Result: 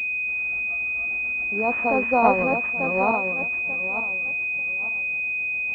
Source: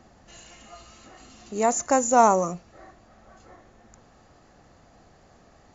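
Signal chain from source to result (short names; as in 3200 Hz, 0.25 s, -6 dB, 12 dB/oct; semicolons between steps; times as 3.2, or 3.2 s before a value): regenerating reverse delay 0.445 s, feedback 50%, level -0.5 dB; tremolo 7 Hz, depth 38%; pulse-width modulation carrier 2500 Hz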